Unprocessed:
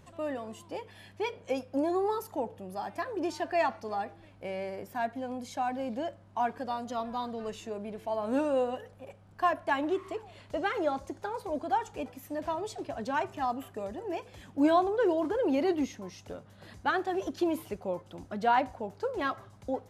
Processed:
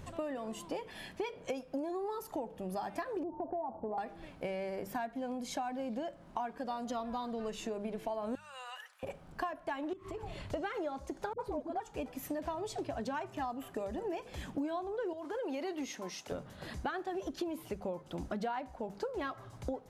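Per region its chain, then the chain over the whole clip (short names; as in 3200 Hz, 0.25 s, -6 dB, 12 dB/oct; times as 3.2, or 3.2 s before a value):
3.23–3.98 elliptic low-pass 940 Hz, stop band 60 dB + compressor 2:1, threshold -37 dBFS
8.35–9.03 HPF 1200 Hz 24 dB/oct + compressor 4:1, threshold -47 dBFS
9.93–10.45 notch comb 240 Hz + compressor 10:1, threshold -43 dBFS + low shelf 190 Hz +11.5 dB
11.33–11.8 high shelf 2900 Hz -11 dB + dispersion highs, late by 60 ms, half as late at 370 Hz
15.13–16.32 HPF 630 Hz 6 dB/oct + compressor 1.5:1, threshold -40 dBFS
whole clip: low shelf 120 Hz +8 dB; notches 50/100/150/200 Hz; compressor 12:1, threshold -40 dBFS; gain +5.5 dB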